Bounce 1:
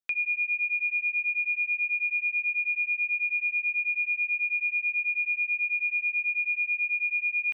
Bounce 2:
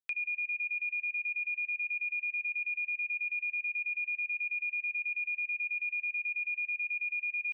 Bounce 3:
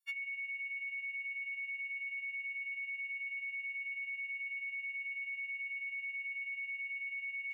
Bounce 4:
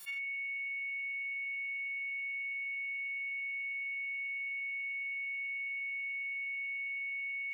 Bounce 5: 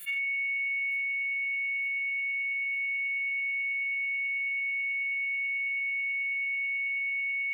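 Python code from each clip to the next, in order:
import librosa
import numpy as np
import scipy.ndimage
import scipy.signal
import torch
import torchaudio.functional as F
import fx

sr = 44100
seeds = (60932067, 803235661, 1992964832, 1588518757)

y1 = fx.high_shelf(x, sr, hz=2400.0, db=6.0)
y1 = fx.level_steps(y1, sr, step_db=14)
y1 = y1 * 10.0 ** (-5.0 / 20.0)
y2 = fx.freq_snap(y1, sr, grid_st=4)
y2 = fx.hpss(y2, sr, part='percussive', gain_db=-9)
y2 = y2 * 10.0 ** (-7.0 / 20.0)
y3 = fx.room_early_taps(y2, sr, ms=(40, 78), db=(-8.0, -7.0))
y3 = fx.env_flatten(y3, sr, amount_pct=100)
y3 = y3 * 10.0 ** (-2.5 / 20.0)
y4 = fx.fixed_phaser(y3, sr, hz=2300.0, stages=4)
y4 = fx.echo_feedback(y4, sr, ms=909, feedback_pct=54, wet_db=-20.0)
y4 = y4 * 10.0 ** (8.0 / 20.0)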